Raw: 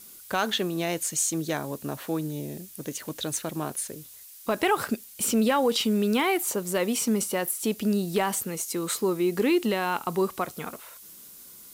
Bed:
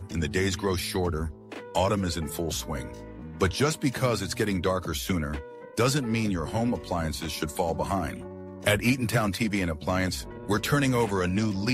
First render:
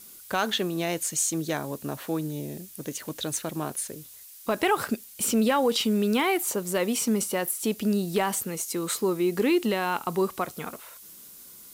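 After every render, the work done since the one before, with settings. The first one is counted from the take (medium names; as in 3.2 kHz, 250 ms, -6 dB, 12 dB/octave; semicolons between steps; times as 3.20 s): no audible change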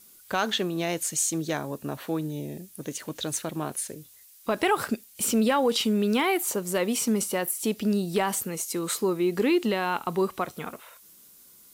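noise print and reduce 6 dB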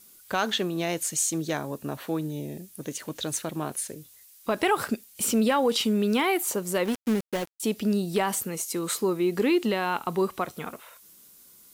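6.85–7.60 s: dead-time distortion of 0.27 ms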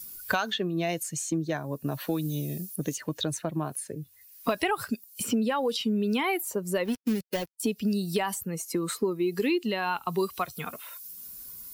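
expander on every frequency bin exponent 1.5; three bands compressed up and down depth 100%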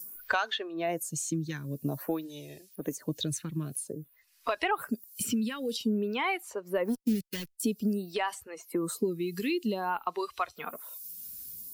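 lamp-driven phase shifter 0.51 Hz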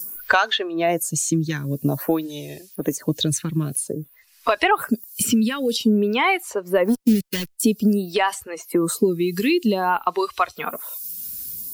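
trim +11 dB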